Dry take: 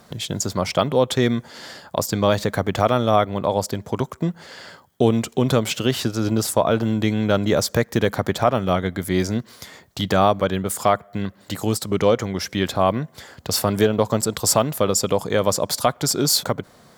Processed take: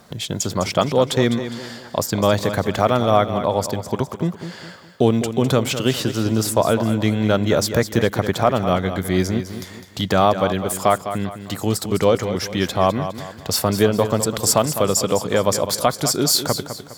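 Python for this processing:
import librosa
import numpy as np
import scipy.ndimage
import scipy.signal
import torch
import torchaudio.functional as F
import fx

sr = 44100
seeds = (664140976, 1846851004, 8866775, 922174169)

p1 = x + fx.echo_feedback(x, sr, ms=205, feedback_pct=39, wet_db=-10.5, dry=0)
y = p1 * librosa.db_to_amplitude(1.0)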